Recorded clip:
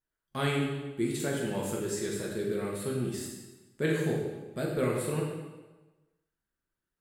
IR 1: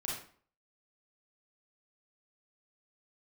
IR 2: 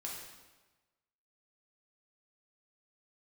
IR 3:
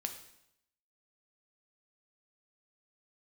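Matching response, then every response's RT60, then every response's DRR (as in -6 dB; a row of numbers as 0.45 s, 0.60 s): 2; 0.50 s, 1.2 s, 0.80 s; -5.0 dB, -3.5 dB, 5.0 dB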